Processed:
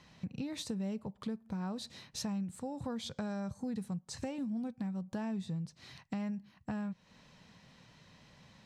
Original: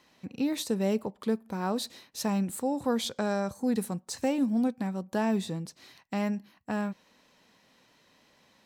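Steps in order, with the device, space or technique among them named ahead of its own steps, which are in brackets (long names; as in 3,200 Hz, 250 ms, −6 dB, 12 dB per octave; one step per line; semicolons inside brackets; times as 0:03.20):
jukebox (low-pass filter 7,900 Hz 12 dB per octave; low shelf with overshoot 210 Hz +10.5 dB, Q 1.5; downward compressor 4 to 1, threshold −40 dBFS, peak gain reduction 17.5 dB)
level +1.5 dB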